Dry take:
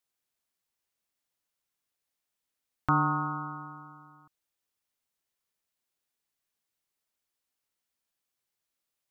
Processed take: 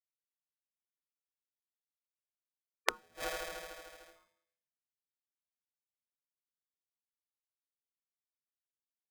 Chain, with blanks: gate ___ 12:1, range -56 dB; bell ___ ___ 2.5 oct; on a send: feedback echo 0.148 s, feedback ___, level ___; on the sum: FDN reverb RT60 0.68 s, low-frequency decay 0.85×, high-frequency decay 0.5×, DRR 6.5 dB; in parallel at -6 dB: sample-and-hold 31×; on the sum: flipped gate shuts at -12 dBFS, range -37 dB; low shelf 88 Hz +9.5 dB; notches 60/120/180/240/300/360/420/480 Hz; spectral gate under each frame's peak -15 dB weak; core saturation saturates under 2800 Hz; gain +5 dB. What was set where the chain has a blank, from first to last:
-53 dBFS, 2300 Hz, +11 dB, 44%, -23 dB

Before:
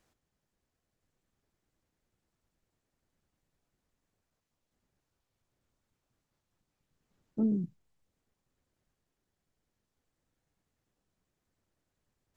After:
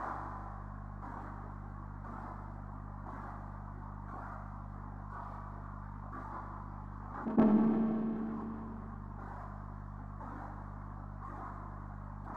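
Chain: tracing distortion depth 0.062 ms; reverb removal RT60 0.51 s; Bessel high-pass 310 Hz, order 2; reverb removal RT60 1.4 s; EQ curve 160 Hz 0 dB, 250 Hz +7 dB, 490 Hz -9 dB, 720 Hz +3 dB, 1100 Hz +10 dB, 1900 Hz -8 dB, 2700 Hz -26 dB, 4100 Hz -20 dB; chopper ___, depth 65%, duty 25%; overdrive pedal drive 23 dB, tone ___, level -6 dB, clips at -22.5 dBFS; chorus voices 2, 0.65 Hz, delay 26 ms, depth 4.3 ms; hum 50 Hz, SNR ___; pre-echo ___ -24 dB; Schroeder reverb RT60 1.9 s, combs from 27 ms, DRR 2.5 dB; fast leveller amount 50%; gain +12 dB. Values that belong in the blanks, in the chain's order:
0.98 Hz, 1200 Hz, 23 dB, 0.117 s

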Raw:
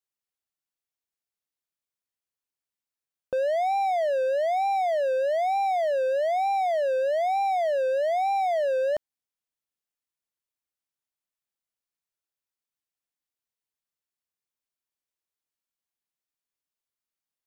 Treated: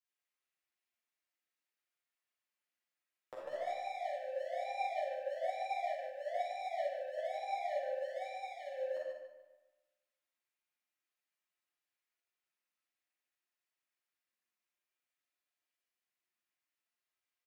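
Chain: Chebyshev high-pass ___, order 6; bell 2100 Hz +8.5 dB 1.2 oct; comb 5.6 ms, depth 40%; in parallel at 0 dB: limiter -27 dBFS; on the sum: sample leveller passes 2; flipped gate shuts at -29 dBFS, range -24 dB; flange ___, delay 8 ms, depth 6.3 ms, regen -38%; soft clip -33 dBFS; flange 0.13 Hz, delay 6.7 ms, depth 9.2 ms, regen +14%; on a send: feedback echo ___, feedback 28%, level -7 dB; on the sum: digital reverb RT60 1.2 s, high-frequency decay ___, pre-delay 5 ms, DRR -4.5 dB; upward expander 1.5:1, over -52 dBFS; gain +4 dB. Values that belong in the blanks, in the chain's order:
220 Hz, 1.2 Hz, 0.148 s, 0.6×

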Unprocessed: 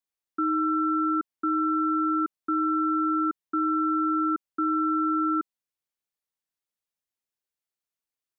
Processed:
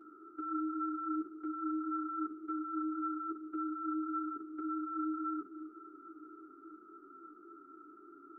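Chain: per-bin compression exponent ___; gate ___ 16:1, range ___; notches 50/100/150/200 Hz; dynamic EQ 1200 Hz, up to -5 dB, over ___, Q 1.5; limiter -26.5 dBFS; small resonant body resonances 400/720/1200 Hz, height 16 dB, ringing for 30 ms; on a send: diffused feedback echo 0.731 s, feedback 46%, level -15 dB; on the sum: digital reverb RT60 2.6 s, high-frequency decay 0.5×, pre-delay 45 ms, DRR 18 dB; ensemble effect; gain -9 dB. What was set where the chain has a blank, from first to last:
0.2, -30 dBFS, -9 dB, -41 dBFS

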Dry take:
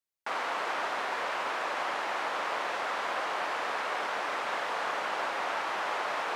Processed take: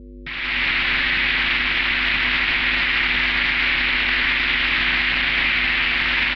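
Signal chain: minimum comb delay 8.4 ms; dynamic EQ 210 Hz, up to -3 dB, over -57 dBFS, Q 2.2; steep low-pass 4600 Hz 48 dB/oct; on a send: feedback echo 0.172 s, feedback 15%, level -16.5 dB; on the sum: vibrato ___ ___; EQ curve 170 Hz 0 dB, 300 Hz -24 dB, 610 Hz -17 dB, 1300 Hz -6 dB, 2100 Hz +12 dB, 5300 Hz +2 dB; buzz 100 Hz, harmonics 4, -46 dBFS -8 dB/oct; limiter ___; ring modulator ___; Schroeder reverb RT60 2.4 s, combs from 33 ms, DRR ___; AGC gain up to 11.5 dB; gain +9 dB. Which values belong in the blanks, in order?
0.68 Hz, 10 cents, -29 dBFS, 150 Hz, 9 dB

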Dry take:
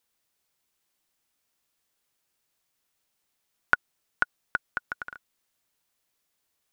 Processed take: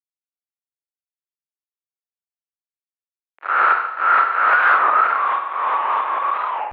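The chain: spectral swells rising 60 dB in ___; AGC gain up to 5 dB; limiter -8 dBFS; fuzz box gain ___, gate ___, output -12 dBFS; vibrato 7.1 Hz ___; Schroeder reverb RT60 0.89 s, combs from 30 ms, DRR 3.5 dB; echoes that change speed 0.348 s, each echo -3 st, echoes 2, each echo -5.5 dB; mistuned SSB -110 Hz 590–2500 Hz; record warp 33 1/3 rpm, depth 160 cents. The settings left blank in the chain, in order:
0.53 s, 40 dB, -42 dBFS, 38 cents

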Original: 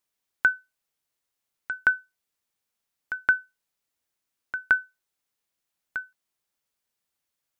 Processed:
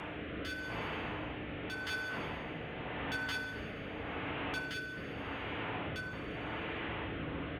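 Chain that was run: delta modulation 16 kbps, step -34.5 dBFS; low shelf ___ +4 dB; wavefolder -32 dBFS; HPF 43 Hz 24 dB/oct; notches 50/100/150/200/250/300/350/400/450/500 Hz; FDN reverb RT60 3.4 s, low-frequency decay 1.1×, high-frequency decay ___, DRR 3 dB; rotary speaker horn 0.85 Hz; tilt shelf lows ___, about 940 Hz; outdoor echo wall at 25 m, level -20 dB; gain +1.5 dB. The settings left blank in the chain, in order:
500 Hz, 0.55×, +3.5 dB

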